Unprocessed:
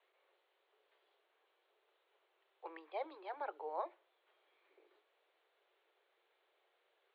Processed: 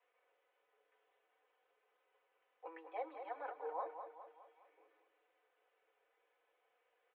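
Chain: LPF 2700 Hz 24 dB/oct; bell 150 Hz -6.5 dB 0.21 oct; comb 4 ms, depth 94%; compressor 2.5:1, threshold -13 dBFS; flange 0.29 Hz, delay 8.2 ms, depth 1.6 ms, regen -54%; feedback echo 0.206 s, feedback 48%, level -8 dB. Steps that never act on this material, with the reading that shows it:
bell 150 Hz: input band starts at 270 Hz; compressor, threshold -13 dBFS: input peak -24.5 dBFS

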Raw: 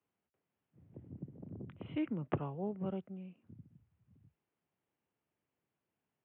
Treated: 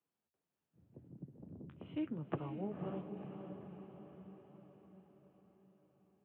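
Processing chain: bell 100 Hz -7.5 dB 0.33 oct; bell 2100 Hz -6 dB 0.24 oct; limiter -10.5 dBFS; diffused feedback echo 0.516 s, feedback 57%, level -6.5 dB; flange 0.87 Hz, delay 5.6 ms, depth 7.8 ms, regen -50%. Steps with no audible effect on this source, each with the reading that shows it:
limiter -10.5 dBFS: input peak -17.5 dBFS

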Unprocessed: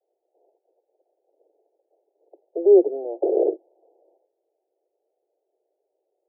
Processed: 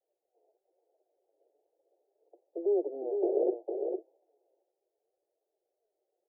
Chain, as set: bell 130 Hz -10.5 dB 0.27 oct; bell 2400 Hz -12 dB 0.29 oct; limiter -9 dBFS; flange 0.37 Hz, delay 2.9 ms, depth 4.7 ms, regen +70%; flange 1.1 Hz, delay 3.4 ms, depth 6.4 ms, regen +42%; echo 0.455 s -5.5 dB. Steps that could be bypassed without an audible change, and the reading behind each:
bell 130 Hz: input band starts at 290 Hz; bell 2400 Hz: input band ends at 760 Hz

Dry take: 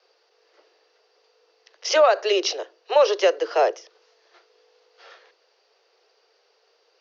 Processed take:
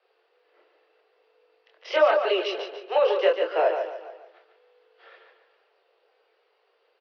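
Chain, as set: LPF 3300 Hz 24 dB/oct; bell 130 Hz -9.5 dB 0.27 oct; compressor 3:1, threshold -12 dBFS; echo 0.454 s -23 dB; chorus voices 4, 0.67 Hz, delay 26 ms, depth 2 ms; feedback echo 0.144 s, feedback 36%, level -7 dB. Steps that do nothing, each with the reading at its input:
bell 130 Hz: input band starts at 300 Hz

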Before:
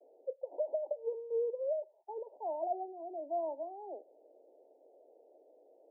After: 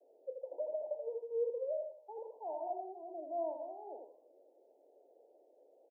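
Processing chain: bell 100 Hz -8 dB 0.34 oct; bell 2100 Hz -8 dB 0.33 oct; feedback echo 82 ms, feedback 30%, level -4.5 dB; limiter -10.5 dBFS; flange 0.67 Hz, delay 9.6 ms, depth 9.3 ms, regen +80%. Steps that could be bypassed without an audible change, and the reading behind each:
bell 100 Hz: input band starts at 270 Hz; bell 2100 Hz: input band ends at 1000 Hz; limiter -10.5 dBFS: input peak -23.5 dBFS

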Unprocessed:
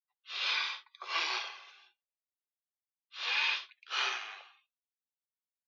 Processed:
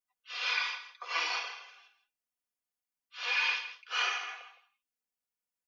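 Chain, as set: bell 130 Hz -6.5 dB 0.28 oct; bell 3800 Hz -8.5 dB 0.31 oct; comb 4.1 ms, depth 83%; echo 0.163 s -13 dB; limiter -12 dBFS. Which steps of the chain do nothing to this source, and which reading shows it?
bell 130 Hz: input band starts at 320 Hz; limiter -12 dBFS: input peak -17.5 dBFS

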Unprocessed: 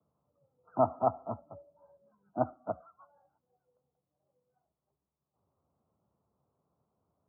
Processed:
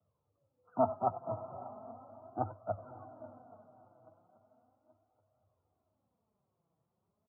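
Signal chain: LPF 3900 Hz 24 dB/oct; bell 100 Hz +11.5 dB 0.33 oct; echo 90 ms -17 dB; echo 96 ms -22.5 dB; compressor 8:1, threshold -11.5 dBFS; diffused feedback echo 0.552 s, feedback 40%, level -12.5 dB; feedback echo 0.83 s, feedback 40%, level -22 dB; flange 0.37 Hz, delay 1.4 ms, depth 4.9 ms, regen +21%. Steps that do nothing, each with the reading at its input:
LPF 3900 Hz: input band ends at 1500 Hz; compressor, threshold -11.5 dBFS: input peak -13.5 dBFS

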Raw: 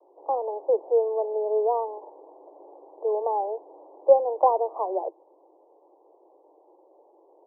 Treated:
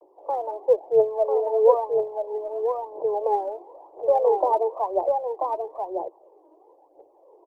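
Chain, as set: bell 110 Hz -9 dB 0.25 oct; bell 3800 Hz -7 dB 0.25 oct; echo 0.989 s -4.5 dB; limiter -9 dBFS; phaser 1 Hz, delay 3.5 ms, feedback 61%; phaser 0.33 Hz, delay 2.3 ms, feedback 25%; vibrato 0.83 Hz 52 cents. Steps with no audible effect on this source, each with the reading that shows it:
bell 110 Hz: input band starts at 320 Hz; bell 3800 Hz: input band ends at 1100 Hz

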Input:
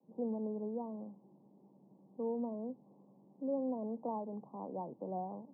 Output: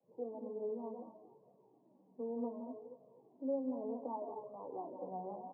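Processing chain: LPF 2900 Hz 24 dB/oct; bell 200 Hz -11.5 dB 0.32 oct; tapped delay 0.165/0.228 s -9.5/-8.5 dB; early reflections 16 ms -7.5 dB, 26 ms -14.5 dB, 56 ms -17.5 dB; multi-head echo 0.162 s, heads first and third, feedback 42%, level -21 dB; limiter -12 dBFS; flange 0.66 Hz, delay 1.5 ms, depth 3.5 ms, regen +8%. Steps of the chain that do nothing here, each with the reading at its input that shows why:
LPF 2900 Hz: input band ends at 1000 Hz; limiter -12 dBFS: input peak -25.5 dBFS

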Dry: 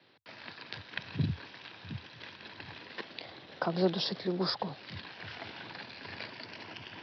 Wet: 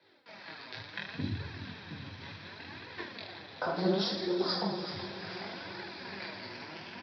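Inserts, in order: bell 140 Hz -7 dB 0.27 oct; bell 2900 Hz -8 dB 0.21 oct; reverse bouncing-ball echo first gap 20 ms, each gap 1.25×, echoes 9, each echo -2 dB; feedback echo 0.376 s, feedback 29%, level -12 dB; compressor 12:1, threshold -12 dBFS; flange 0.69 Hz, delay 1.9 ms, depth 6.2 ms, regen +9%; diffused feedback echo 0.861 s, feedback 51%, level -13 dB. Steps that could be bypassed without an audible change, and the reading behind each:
compressor, threshold -12 dBFS: input peak -13.5 dBFS

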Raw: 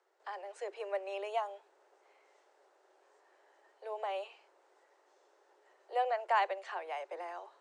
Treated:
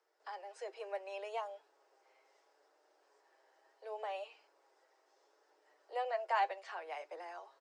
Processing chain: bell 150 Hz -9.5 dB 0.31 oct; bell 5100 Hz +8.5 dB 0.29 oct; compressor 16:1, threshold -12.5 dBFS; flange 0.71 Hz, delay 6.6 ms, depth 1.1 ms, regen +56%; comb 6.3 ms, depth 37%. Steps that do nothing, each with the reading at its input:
bell 150 Hz: input band starts at 360 Hz; compressor, threshold -12.5 dBFS: input peak -19.0 dBFS

